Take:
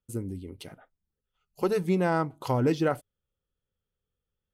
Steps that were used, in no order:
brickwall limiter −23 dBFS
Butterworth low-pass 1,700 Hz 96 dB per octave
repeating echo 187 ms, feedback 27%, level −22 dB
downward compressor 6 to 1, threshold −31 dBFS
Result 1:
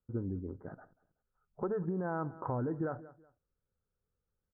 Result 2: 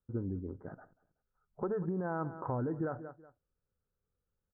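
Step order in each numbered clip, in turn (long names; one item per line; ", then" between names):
Butterworth low-pass, then brickwall limiter, then repeating echo, then downward compressor
repeating echo, then brickwall limiter, then Butterworth low-pass, then downward compressor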